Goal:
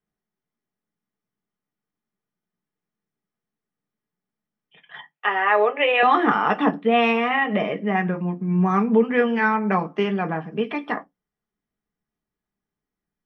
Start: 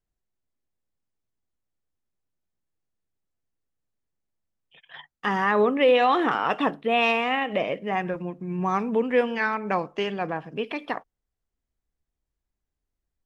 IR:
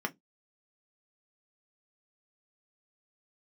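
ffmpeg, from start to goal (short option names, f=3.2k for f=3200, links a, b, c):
-filter_complex "[0:a]asettb=1/sr,asplit=3[a][b][c];[a]atrim=end=5.114[d];[b]atrim=start=5.11:end=6.03,asetpts=PTS-STARTPTS,afade=t=in:d=0.004:c=qsin,afade=t=out:st=0.916:d=0.004:c=qsin,highpass=f=450:w=0.5412,highpass=f=450:w=1.3066,equalizer=f=650:t=q:w=4:g=5,equalizer=f=1.2k:t=q:w=4:g=-4,equalizer=f=2.6k:t=q:w=4:g=10,lowpass=f=3.7k:w=0.5412,lowpass=f=3.7k:w=1.3066[e];[c]atrim=start=6.026[f];[d][e]acrossfade=d=0.004:c1=hsin:c2=qsin[g];[g][f]acrossfade=d=0.004:c1=qsin:c2=hsin[h];[1:a]atrim=start_sample=2205[i];[h][i]afir=irnorm=-1:irlink=0,volume=-1.5dB"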